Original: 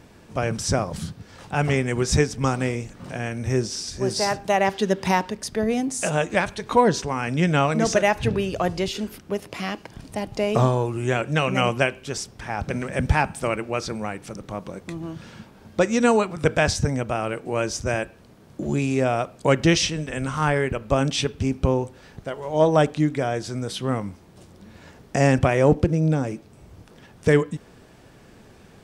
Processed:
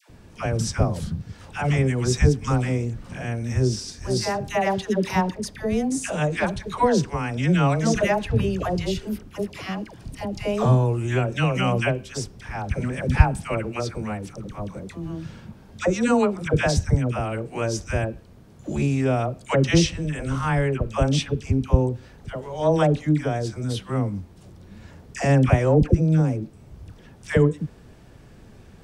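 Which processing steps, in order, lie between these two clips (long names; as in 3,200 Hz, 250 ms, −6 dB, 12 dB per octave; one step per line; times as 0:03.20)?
low-shelf EQ 150 Hz +11.5 dB
all-pass dispersion lows, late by 98 ms, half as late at 790 Hz
level −3 dB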